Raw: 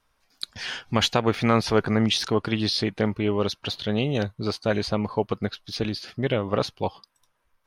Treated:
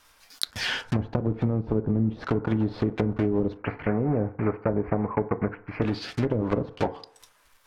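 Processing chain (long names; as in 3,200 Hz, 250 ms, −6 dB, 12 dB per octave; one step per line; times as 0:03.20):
one scale factor per block 3 bits
0:03.57–0:05.82: elliptic low-pass filter 2,300 Hz, stop band 40 dB
treble cut that deepens with the level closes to 320 Hz, closed at −18.5 dBFS
downward compressor, threshold −25 dBFS, peak gain reduction 7 dB
feedback delay network reverb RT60 0.57 s, low-frequency decay 0.75×, high-frequency decay 0.3×, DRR 11 dB
one half of a high-frequency compander encoder only
level +4.5 dB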